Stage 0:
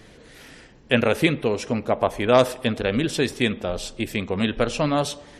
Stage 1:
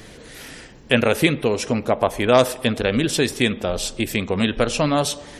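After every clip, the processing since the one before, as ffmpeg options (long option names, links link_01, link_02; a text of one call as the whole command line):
ffmpeg -i in.wav -filter_complex "[0:a]highshelf=frequency=6500:gain=7.5,asplit=2[link_01][link_02];[link_02]acompressor=threshold=-28dB:ratio=6,volume=-0.5dB[link_03];[link_01][link_03]amix=inputs=2:normalize=0" out.wav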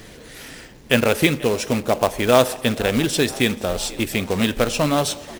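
ffmpeg -i in.wav -filter_complex "[0:a]acrusher=bits=3:mode=log:mix=0:aa=0.000001,asplit=6[link_01][link_02][link_03][link_04][link_05][link_06];[link_02]adelay=487,afreqshift=73,volume=-21dB[link_07];[link_03]adelay=974,afreqshift=146,volume=-25.2dB[link_08];[link_04]adelay=1461,afreqshift=219,volume=-29.3dB[link_09];[link_05]adelay=1948,afreqshift=292,volume=-33.5dB[link_10];[link_06]adelay=2435,afreqshift=365,volume=-37.6dB[link_11];[link_01][link_07][link_08][link_09][link_10][link_11]amix=inputs=6:normalize=0" out.wav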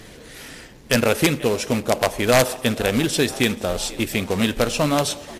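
ffmpeg -i in.wav -af "aeval=exprs='(mod(2.11*val(0)+1,2)-1)/2.11':channel_layout=same" -ar 32000 -c:a libmp3lame -b:a 80k out.mp3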